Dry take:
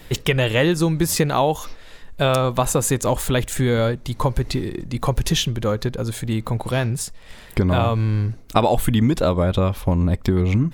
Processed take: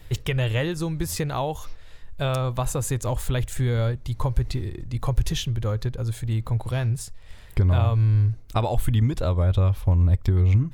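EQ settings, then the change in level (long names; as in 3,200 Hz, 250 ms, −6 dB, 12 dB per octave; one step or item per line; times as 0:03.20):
low shelf with overshoot 140 Hz +9 dB, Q 1.5
−8.5 dB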